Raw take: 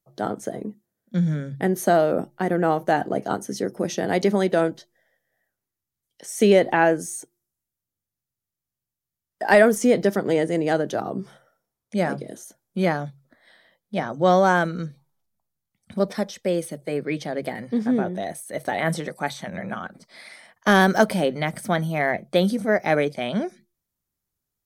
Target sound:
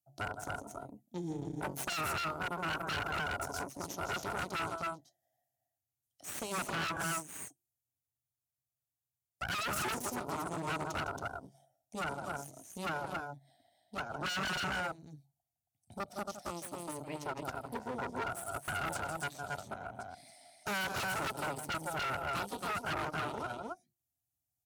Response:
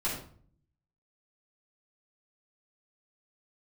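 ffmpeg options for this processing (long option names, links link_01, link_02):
-filter_complex "[0:a]firequalizer=gain_entry='entry(130,0);entry(190,-18);entry(280,-4);entry(420,-26);entry(710,4);entry(1100,-30);entry(2400,-15);entry(7000,-2)':delay=0.05:min_phase=1,asplit=2[link_01][link_02];[link_02]aecho=0:1:160.3|274.1:0.355|0.631[link_03];[link_01][link_03]amix=inputs=2:normalize=0,aeval=exprs='0.355*(cos(1*acos(clip(val(0)/0.355,-1,1)))-cos(1*PI/2))+0.0398*(cos(3*acos(clip(val(0)/0.355,-1,1)))-cos(3*PI/2))+0.158*(cos(4*acos(clip(val(0)/0.355,-1,1)))-cos(4*PI/2))+0.112*(cos(8*acos(clip(val(0)/0.355,-1,1)))-cos(8*PI/2))':channel_layout=same,asplit=2[link_04][link_05];[link_05]acompressor=threshold=-31dB:ratio=6,volume=0dB[link_06];[link_04][link_06]amix=inputs=2:normalize=0,asoftclip=type=hard:threshold=-15dB,alimiter=limit=-20dB:level=0:latency=1:release=341,highpass=93,bandreject=frequency=490:width=12,volume=-6.5dB"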